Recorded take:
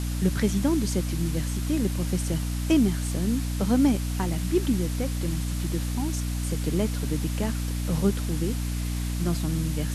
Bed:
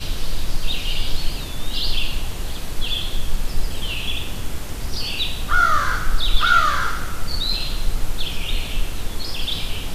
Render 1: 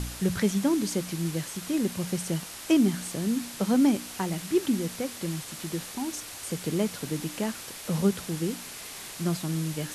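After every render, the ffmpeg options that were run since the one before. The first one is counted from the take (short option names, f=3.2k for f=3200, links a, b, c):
-af "bandreject=f=60:t=h:w=4,bandreject=f=120:t=h:w=4,bandreject=f=180:t=h:w=4,bandreject=f=240:t=h:w=4,bandreject=f=300:t=h:w=4"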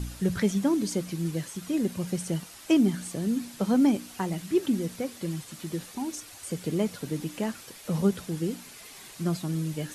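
-af "afftdn=nr=8:nf=-41"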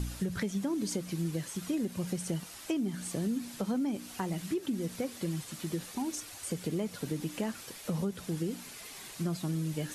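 -af "alimiter=limit=-20dB:level=0:latency=1:release=264,acompressor=threshold=-30dB:ratio=3"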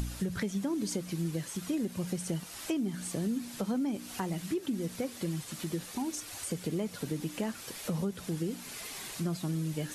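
-af "acompressor=mode=upward:threshold=-35dB:ratio=2.5"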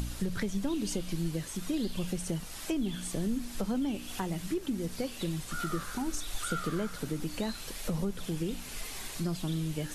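-filter_complex "[1:a]volume=-22dB[a];[0:a][a]amix=inputs=2:normalize=0"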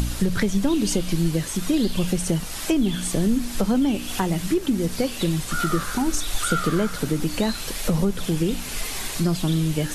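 -af "volume=11dB"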